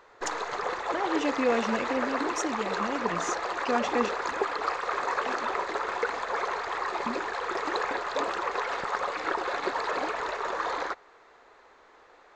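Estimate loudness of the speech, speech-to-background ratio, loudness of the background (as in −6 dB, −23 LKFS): −32.0 LKFS, −1.5 dB, −30.5 LKFS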